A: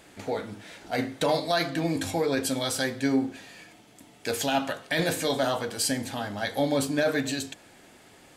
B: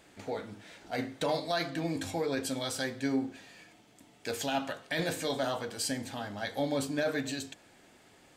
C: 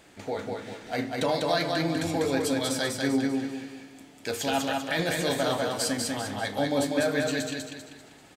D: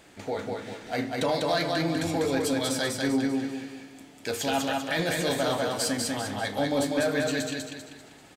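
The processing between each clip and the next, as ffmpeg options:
-af "equalizer=f=11k:t=o:w=0.25:g=-7.5,volume=-6dB"
-af "aecho=1:1:196|392|588|784|980:0.708|0.29|0.119|0.0488|0.02,volume=4dB"
-af "asoftclip=type=tanh:threshold=-17dB,volume=1dB"

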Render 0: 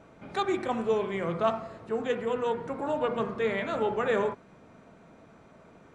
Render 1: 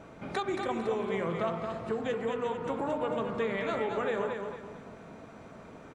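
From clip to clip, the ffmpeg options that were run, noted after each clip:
-af "acompressor=threshold=-34dB:ratio=6,aecho=1:1:225|450|675|900:0.531|0.196|0.0727|0.0269,volume=4.5dB"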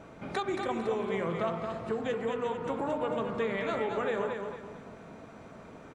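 -af anull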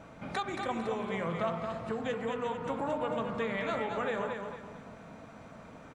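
-af "equalizer=f=380:t=o:w=0.43:g=-8.5"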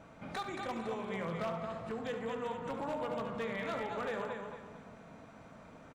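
-af "aeval=exprs='0.0531*(abs(mod(val(0)/0.0531+3,4)-2)-1)':c=same,aecho=1:1:72:0.282,volume=-4.5dB"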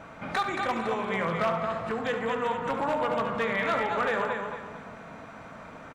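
-af "equalizer=f=1.5k:w=0.6:g=7,volume=6.5dB"

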